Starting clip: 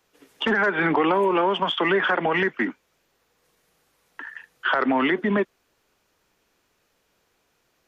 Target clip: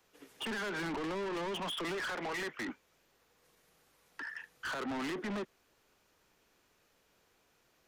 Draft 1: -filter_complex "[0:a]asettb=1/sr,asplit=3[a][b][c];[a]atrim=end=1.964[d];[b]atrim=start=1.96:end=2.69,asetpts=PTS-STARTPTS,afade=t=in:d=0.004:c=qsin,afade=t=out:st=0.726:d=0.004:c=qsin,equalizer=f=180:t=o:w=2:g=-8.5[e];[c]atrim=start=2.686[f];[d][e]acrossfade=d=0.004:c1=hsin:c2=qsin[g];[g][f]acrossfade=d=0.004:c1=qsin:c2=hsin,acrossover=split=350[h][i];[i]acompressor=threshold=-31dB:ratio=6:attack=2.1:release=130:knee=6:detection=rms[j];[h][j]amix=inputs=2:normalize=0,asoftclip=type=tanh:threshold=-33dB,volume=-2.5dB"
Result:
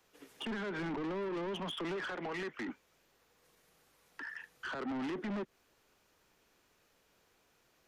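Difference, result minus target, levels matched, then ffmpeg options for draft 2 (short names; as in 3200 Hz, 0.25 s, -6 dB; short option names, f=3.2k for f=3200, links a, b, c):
compressor: peak gain reduction +8.5 dB
-filter_complex "[0:a]asettb=1/sr,asplit=3[a][b][c];[a]atrim=end=1.964[d];[b]atrim=start=1.96:end=2.69,asetpts=PTS-STARTPTS,afade=t=in:d=0.004:c=qsin,afade=t=out:st=0.726:d=0.004:c=qsin,equalizer=f=180:t=o:w=2:g=-8.5[e];[c]atrim=start=2.686[f];[d][e]acrossfade=d=0.004:c1=hsin:c2=qsin[g];[g][f]acrossfade=d=0.004:c1=qsin:c2=hsin,acrossover=split=350[h][i];[i]acompressor=threshold=-21dB:ratio=6:attack=2.1:release=130:knee=6:detection=rms[j];[h][j]amix=inputs=2:normalize=0,asoftclip=type=tanh:threshold=-33dB,volume=-2.5dB"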